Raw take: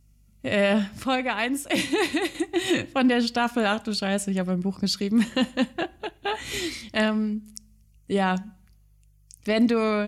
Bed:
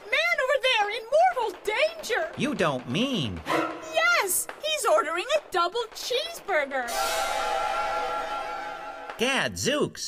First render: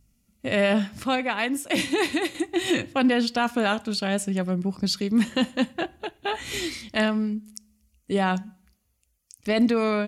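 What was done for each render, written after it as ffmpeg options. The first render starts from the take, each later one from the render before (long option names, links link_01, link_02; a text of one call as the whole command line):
ffmpeg -i in.wav -af "bandreject=frequency=50:width_type=h:width=4,bandreject=frequency=100:width_type=h:width=4,bandreject=frequency=150:width_type=h:width=4" out.wav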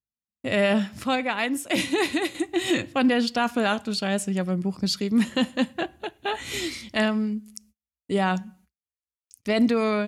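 ffmpeg -i in.wav -af "agate=range=-36dB:threshold=-54dB:ratio=16:detection=peak,highpass=53" out.wav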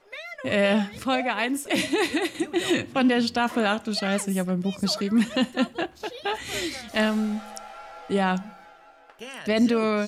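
ffmpeg -i in.wav -i bed.wav -filter_complex "[1:a]volume=-14.5dB[link_01];[0:a][link_01]amix=inputs=2:normalize=0" out.wav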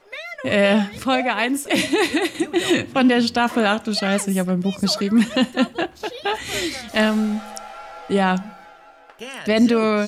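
ffmpeg -i in.wav -af "volume=5dB" out.wav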